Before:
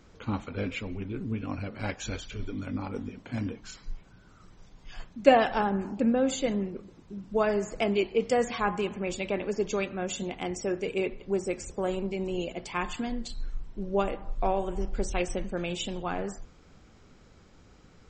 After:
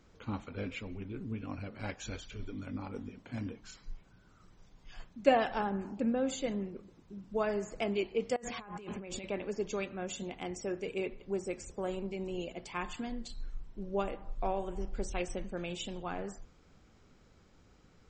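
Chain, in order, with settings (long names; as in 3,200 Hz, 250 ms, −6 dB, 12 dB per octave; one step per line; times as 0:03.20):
0:08.36–0:09.24: compressor whose output falls as the input rises −38 dBFS, ratio −1
level −6.5 dB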